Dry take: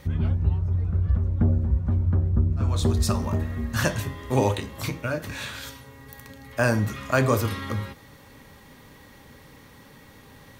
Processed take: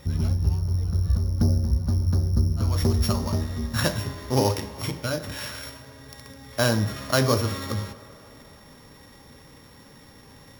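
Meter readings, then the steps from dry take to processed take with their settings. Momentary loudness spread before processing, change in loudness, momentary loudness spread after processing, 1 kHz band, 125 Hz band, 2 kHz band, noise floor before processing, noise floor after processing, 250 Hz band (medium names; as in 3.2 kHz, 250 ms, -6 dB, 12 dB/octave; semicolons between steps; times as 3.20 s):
13 LU, 0.0 dB, 14 LU, -1.0 dB, 0.0 dB, -2.5 dB, -50 dBFS, -50 dBFS, 0.0 dB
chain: sorted samples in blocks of 8 samples; tape echo 76 ms, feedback 90%, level -19.5 dB, low-pass 5.9 kHz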